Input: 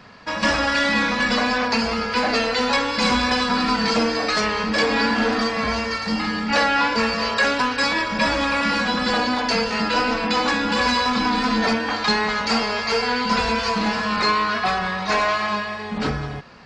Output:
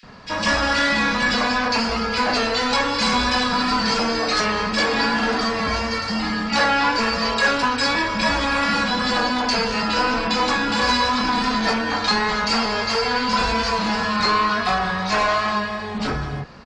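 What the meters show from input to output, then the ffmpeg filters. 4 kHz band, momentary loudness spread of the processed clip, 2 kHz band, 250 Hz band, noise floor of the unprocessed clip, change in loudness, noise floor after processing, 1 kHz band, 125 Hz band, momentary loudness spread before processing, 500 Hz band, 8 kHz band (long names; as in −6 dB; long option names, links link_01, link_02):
+1.5 dB, 4 LU, +0.5 dB, −0.5 dB, −29 dBFS, +0.5 dB, −27 dBFS, +1.0 dB, +1.5 dB, 4 LU, −0.5 dB, +2.0 dB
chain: -filter_complex "[0:a]lowshelf=frequency=150:gain=7,acrossover=split=740[link_01][link_02];[link_01]asoftclip=type=tanh:threshold=-25dB[link_03];[link_03][link_02]amix=inputs=2:normalize=0,flanger=delay=4.3:depth=6.8:regen=-70:speed=0.96:shape=sinusoidal,acrossover=split=2300[link_04][link_05];[link_04]adelay=30[link_06];[link_06][link_05]amix=inputs=2:normalize=0,volume=6.5dB"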